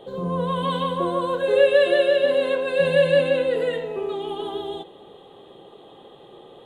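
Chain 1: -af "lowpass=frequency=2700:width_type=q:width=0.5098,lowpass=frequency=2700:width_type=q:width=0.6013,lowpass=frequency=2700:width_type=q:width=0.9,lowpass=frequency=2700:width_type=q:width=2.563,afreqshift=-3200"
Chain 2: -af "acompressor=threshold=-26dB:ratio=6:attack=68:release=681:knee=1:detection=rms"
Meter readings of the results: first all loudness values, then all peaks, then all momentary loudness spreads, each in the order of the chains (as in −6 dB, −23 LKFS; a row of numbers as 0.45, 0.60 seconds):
−18.0, −29.5 LKFS; −5.5, −17.0 dBFS; 12, 19 LU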